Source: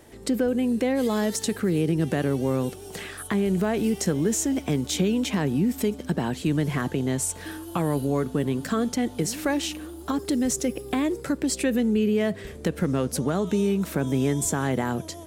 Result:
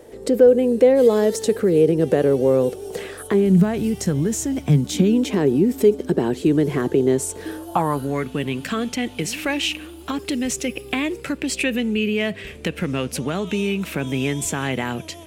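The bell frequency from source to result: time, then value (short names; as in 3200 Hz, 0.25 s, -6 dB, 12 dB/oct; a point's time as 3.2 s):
bell +14.5 dB 0.8 oct
3.28 s 480 Hz
3.76 s 110 Hz
4.6 s 110 Hz
5.25 s 390 Hz
7.45 s 390 Hz
8.29 s 2600 Hz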